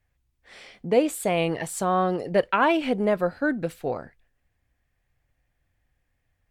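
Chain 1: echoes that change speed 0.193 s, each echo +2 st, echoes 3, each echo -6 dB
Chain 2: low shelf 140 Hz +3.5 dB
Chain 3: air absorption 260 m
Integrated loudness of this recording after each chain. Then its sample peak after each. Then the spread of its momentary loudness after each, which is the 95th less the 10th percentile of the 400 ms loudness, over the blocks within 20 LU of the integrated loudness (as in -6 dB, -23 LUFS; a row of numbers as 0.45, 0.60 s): -23.5, -24.0, -25.5 LUFS; -7.0, -8.0, -10.0 dBFS; 11, 10, 9 LU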